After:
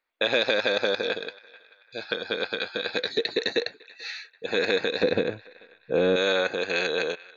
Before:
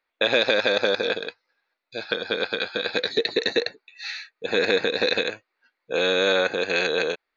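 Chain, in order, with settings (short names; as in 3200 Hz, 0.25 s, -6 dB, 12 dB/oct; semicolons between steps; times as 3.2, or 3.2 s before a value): 5.03–6.16 tilt -4.5 dB/oct; narrowing echo 0.438 s, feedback 45%, band-pass 1800 Hz, level -20 dB; gain -3 dB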